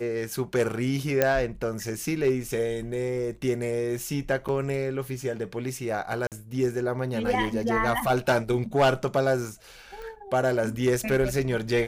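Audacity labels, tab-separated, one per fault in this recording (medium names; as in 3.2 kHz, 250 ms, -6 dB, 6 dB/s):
1.220000	1.220000	pop -7 dBFS
4.480000	4.490000	dropout 7 ms
6.270000	6.320000	dropout 48 ms
10.020000	10.020000	pop -27 dBFS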